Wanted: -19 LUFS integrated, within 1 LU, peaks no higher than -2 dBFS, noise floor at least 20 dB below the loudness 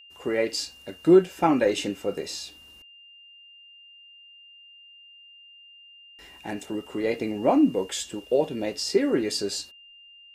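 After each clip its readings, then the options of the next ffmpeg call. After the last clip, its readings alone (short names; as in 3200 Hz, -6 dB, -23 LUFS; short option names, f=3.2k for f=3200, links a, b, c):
steady tone 2800 Hz; tone level -48 dBFS; loudness -25.0 LUFS; peak -7.0 dBFS; loudness target -19.0 LUFS
-> -af "bandreject=f=2.8k:w=30"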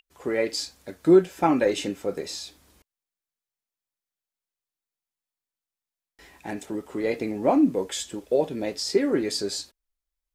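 steady tone none; loudness -25.0 LUFS; peak -7.0 dBFS; loudness target -19.0 LUFS
-> -af "volume=6dB,alimiter=limit=-2dB:level=0:latency=1"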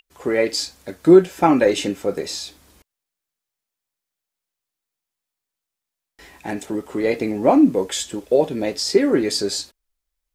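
loudness -19.0 LUFS; peak -2.0 dBFS; noise floor -85 dBFS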